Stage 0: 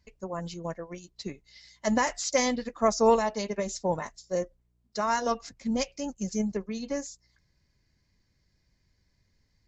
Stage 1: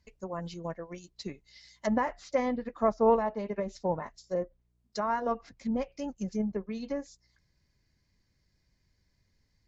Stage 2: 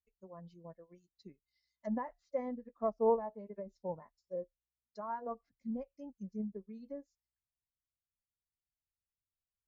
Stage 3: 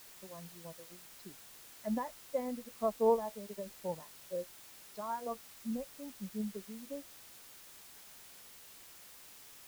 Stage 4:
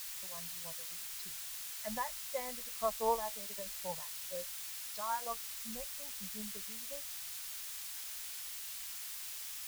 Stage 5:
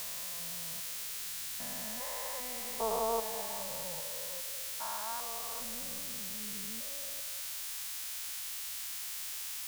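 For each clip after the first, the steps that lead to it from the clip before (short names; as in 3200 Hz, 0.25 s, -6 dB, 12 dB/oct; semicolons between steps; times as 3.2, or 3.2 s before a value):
treble ducked by the level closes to 1500 Hz, closed at -26.5 dBFS; gain -2 dB
spectral expander 1.5:1; gain -6 dB
added noise white -56 dBFS; gain +1 dB
passive tone stack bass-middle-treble 10-0-10; in parallel at -6 dB: backlash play -59.5 dBFS; on the sum: gain +8.5 dB
stepped spectrum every 0.4 s; delay with a stepping band-pass 0.21 s, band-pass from 530 Hz, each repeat 0.7 oct, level -9.5 dB; gain +5.5 dB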